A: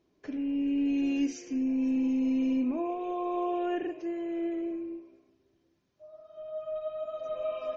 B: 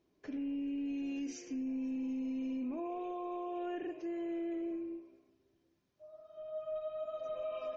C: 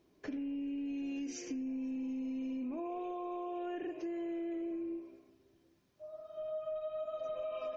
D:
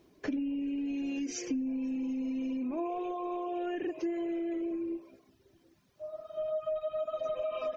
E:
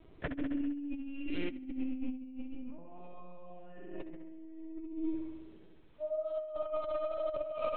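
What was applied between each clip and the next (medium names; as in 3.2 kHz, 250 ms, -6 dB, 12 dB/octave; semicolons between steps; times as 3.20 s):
peak limiter -29 dBFS, peak gain reduction 8.5 dB; trim -4 dB
compression, threshold -43 dBFS, peak gain reduction 7.5 dB; trim +6 dB
reverb removal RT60 0.78 s; trim +7.5 dB
LPC vocoder at 8 kHz pitch kept; flutter echo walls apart 11.3 m, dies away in 1.2 s; compressor with a negative ratio -35 dBFS, ratio -0.5; trim -1.5 dB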